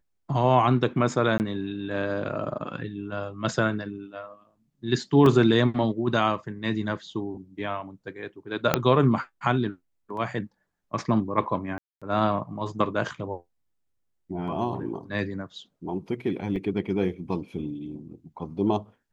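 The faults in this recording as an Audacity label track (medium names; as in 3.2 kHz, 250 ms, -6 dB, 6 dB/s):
1.380000	1.400000	dropout 19 ms
5.260000	5.260000	dropout 2.6 ms
8.740000	8.740000	pop -4 dBFS
11.780000	12.020000	dropout 236 ms
16.560000	16.560000	dropout 4.1 ms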